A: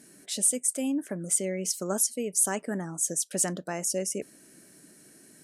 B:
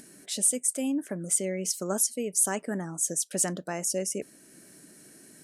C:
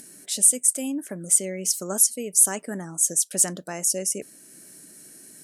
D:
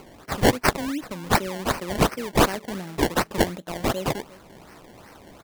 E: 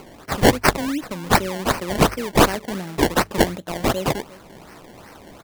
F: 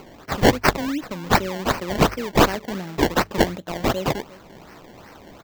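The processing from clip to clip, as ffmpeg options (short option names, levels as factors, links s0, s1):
-af "acompressor=mode=upward:threshold=0.00447:ratio=2.5"
-af "aemphasis=mode=production:type=cd"
-filter_complex "[0:a]asplit=2[s0][s1];[s1]adelay=351,lowpass=f=1800:p=1,volume=0.112,asplit=2[s2][s3];[s3]adelay=351,lowpass=f=1800:p=1,volume=0.41,asplit=2[s4][s5];[s5]adelay=351,lowpass=f=1800:p=1,volume=0.41[s6];[s0][s2][s4][s6]amix=inputs=4:normalize=0,acrusher=samples=24:mix=1:aa=0.000001:lfo=1:lforange=24:lforate=2.7"
-af "bandreject=f=50:t=h:w=6,bandreject=f=100:t=h:w=6,volume=1.58"
-af "equalizer=f=10000:w=2.3:g=-12.5,volume=0.891"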